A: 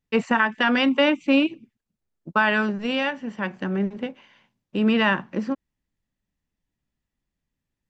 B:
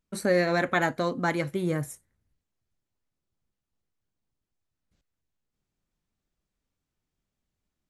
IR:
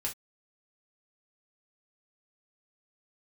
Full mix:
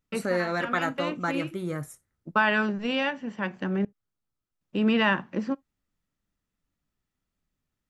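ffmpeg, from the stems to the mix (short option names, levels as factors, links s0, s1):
-filter_complex "[0:a]volume=0.708,asplit=3[s0][s1][s2];[s0]atrim=end=3.85,asetpts=PTS-STARTPTS,afade=t=out:st=3.846:d=0.004:c=hsin[s3];[s1]atrim=start=3.85:end=4.61,asetpts=PTS-STARTPTS,volume=0[s4];[s2]atrim=start=4.61,asetpts=PTS-STARTPTS,afade=t=in:d=0.004:c=hsin[s5];[s3][s4][s5]concat=n=3:v=0:a=1,asplit=2[s6][s7];[s7]volume=0.0668[s8];[1:a]equalizer=f=1300:w=4.9:g=9.5,volume=0.531,asplit=3[s9][s10][s11];[s10]volume=0.158[s12];[s11]apad=whole_len=348200[s13];[s6][s13]sidechaincompress=threshold=0.00447:ratio=3:attack=16:release=180[s14];[2:a]atrim=start_sample=2205[s15];[s8][s12]amix=inputs=2:normalize=0[s16];[s16][s15]afir=irnorm=-1:irlink=0[s17];[s14][s9][s17]amix=inputs=3:normalize=0"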